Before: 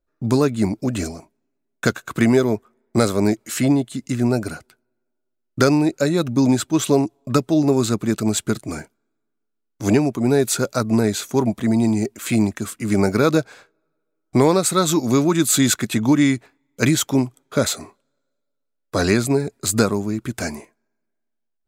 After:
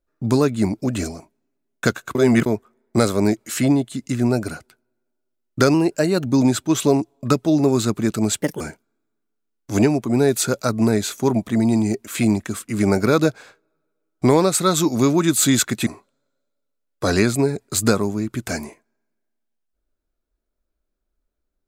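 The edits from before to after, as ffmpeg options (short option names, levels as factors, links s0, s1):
-filter_complex "[0:a]asplit=8[s0][s1][s2][s3][s4][s5][s6][s7];[s0]atrim=end=2.152[s8];[s1]atrim=start=2.148:end=2.462,asetpts=PTS-STARTPTS,areverse[s9];[s2]atrim=start=2.458:end=5.744[s10];[s3]atrim=start=5.74:end=6.3,asetpts=PTS-STARTPTS,asetrate=47628,aresample=44100[s11];[s4]atrim=start=6.296:end=8.454[s12];[s5]atrim=start=8.45:end=8.72,asetpts=PTS-STARTPTS,asetrate=59976,aresample=44100,atrim=end_sample=8755,asetpts=PTS-STARTPTS[s13];[s6]atrim=start=8.716:end=15.982[s14];[s7]atrim=start=17.778[s15];[s8][s9]acrossfade=d=0.004:c1=hsin:c2=hsin[s16];[s16][s10]acrossfade=d=0.004:c1=hsin:c2=hsin[s17];[s17][s11]acrossfade=d=0.004:c1=hsin:c2=hsin[s18];[s18][s12]acrossfade=d=0.004:c1=hsin:c2=hsin[s19];[s19][s13]acrossfade=d=0.004:c1=hsin:c2=hsin[s20];[s20][s14]acrossfade=d=0.004:c1=hsin:c2=hsin[s21];[s21][s15]acrossfade=d=0.004:c1=hsin:c2=hsin"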